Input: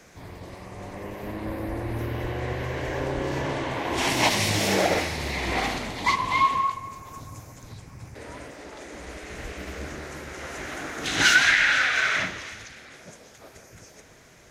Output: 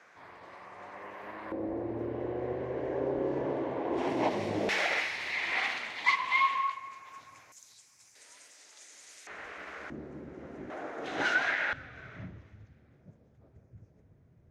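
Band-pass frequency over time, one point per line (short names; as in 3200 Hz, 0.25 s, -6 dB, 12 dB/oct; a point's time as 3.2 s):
band-pass, Q 1.3
1300 Hz
from 1.52 s 420 Hz
from 4.69 s 2100 Hz
from 7.52 s 7200 Hz
from 9.27 s 1300 Hz
from 9.9 s 240 Hz
from 10.7 s 590 Hz
from 11.73 s 100 Hz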